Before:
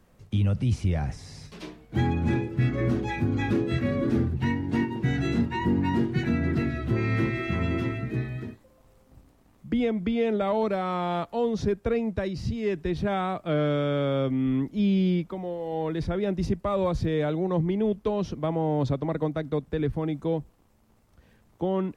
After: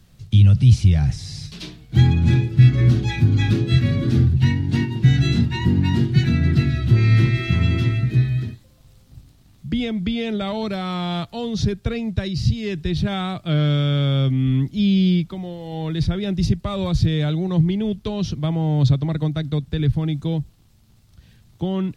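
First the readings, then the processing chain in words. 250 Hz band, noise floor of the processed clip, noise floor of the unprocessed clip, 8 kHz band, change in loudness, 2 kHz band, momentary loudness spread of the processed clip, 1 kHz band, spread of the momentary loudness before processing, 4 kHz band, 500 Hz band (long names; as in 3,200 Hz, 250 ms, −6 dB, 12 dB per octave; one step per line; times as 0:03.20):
+5.0 dB, −53 dBFS, −61 dBFS, can't be measured, +7.5 dB, +4.0 dB, 10 LU, −1.5 dB, 6 LU, +12.0 dB, −2.5 dB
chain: octave-band graphic EQ 125/250/500/1,000/2,000/4,000 Hz +7/−5/−10/−8/−4/+7 dB
level +8 dB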